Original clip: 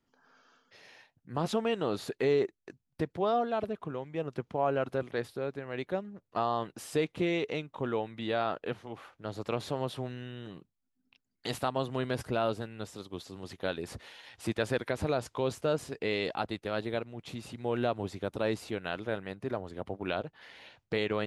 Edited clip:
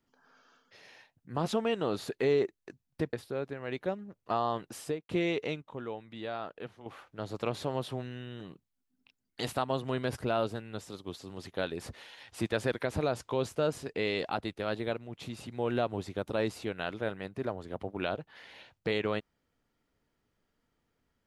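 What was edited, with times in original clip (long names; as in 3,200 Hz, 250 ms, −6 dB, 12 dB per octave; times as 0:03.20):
0:03.13–0:05.19: remove
0:06.85–0:07.15: fade out and dull
0:07.68–0:08.92: clip gain −7 dB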